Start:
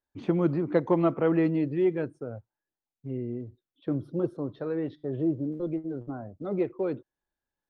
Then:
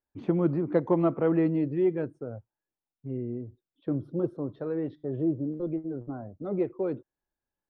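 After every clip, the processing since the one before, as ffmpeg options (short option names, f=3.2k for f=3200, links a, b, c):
-af "highshelf=f=2k:g=-9.5"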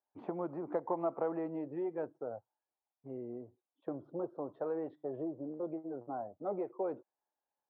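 -af "acompressor=threshold=-28dB:ratio=5,bandpass=f=800:t=q:w=2.3:csg=0,volume=6dB"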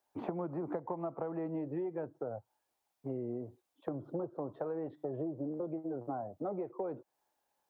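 -filter_complex "[0:a]acrossover=split=150[a][b];[b]acompressor=threshold=-47dB:ratio=6[c];[a][c]amix=inputs=2:normalize=0,volume=10.5dB"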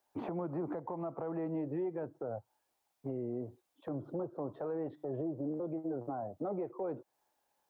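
-af "alimiter=level_in=8dB:limit=-24dB:level=0:latency=1:release=13,volume=-8dB,volume=2dB"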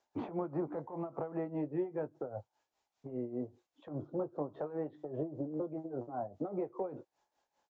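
-filter_complex "[0:a]asplit=2[a][b];[b]adelay=20,volume=-10dB[c];[a][c]amix=inputs=2:normalize=0,tremolo=f=5:d=0.75,aresample=16000,aresample=44100,volume=2.5dB"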